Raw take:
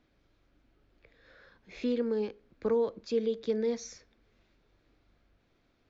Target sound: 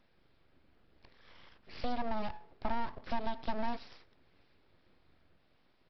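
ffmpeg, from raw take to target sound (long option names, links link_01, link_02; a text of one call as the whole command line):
ffmpeg -i in.wav -af "bandreject=frequency=85.07:width_type=h:width=4,bandreject=frequency=170.14:width_type=h:width=4,bandreject=frequency=255.21:width_type=h:width=4,bandreject=frequency=340.28:width_type=h:width=4,bandreject=frequency=425.35:width_type=h:width=4,bandreject=frequency=510.42:width_type=h:width=4,bandreject=frequency=595.49:width_type=h:width=4,bandreject=frequency=680.56:width_type=h:width=4,bandreject=frequency=765.63:width_type=h:width=4,acompressor=threshold=-31dB:ratio=4,aresample=11025,aeval=exprs='abs(val(0))':channel_layout=same,aresample=44100,volume=2.5dB" out.wav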